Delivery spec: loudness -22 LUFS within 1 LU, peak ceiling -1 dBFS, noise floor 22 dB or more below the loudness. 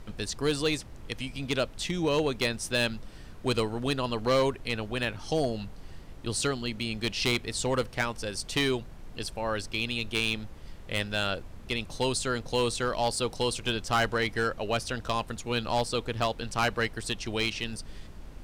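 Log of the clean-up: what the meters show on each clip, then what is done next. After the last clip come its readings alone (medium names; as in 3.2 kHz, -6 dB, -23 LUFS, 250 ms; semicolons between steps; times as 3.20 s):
clipped samples 0.5%; clipping level -19.0 dBFS; noise floor -46 dBFS; noise floor target -52 dBFS; loudness -30.0 LUFS; peak level -19.0 dBFS; loudness target -22.0 LUFS
-> clip repair -19 dBFS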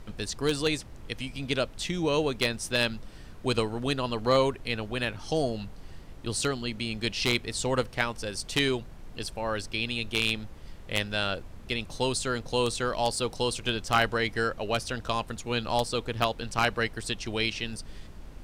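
clipped samples 0.0%; noise floor -46 dBFS; noise floor target -51 dBFS
-> noise print and reduce 6 dB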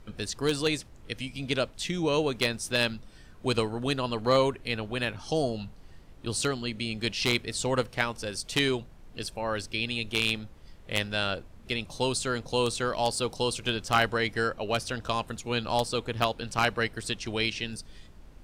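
noise floor -51 dBFS; loudness -29.0 LUFS; peak level -10.0 dBFS; loudness target -22.0 LUFS
-> trim +7 dB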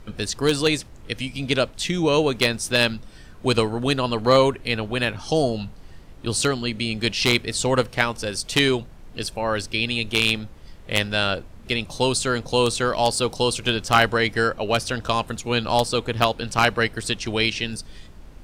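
loudness -22.0 LUFS; peak level -3.0 dBFS; noise floor -44 dBFS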